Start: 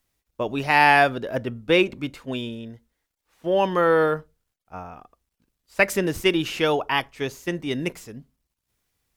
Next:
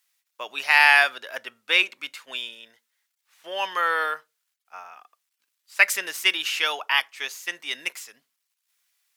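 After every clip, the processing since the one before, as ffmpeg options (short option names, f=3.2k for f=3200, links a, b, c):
-af "highpass=1.5k,volume=5dB"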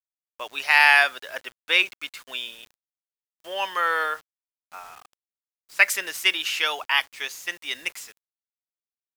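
-af "acrusher=bits=7:mix=0:aa=0.000001"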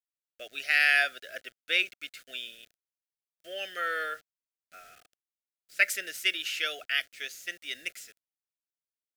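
-af "asuperstop=centerf=970:order=8:qfactor=1.6,volume=-6.5dB"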